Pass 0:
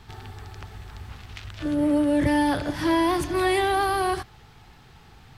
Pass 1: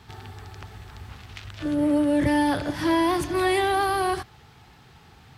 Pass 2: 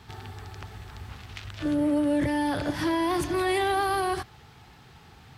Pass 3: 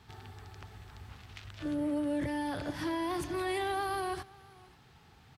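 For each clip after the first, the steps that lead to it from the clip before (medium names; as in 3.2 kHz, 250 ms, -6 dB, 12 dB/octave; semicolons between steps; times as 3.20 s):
high-pass 61 Hz
peak limiter -18 dBFS, peak gain reduction 7 dB
delay 530 ms -24 dB; trim -8 dB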